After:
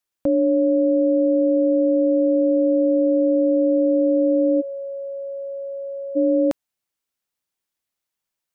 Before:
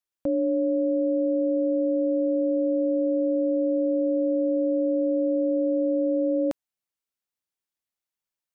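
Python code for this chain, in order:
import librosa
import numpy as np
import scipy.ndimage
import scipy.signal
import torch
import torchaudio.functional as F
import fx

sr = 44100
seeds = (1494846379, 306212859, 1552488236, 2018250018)

y = fx.steep_highpass(x, sr, hz=630.0, slope=48, at=(4.6, 6.15), fade=0.02)
y = y * librosa.db_to_amplitude(6.0)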